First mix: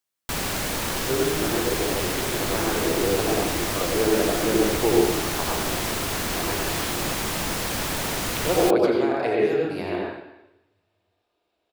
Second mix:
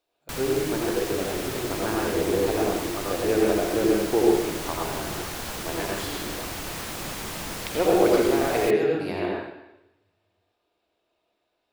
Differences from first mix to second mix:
speech: entry -0.70 s; background -6.5 dB

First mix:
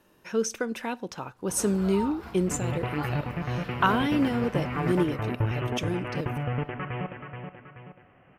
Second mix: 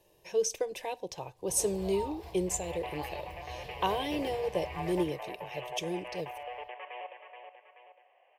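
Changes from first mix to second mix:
second sound: add high-pass 610 Hz 24 dB/octave; master: add static phaser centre 570 Hz, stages 4

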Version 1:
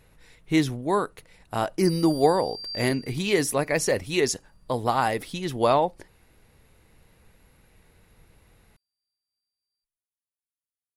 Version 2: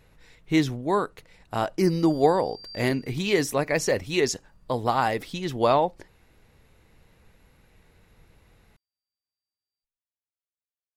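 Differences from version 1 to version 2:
background: add treble shelf 3.7 kHz -11.5 dB; master: add peaking EQ 10 kHz -10.5 dB 0.35 oct

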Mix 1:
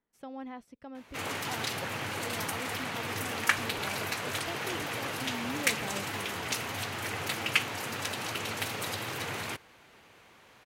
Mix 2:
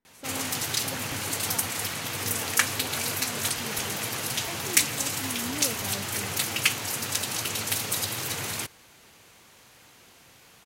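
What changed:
background: entry -0.90 s; master: add tone controls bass +4 dB, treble +13 dB

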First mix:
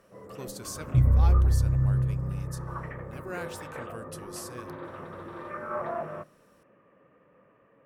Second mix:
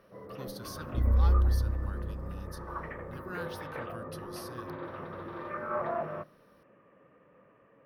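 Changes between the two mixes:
speech: add static phaser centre 2.2 kHz, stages 6; second sound: add static phaser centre 320 Hz, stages 4

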